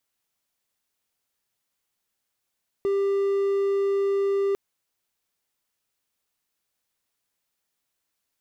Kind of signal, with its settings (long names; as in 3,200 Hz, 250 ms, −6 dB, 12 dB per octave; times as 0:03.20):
tone triangle 396 Hz −18.5 dBFS 1.70 s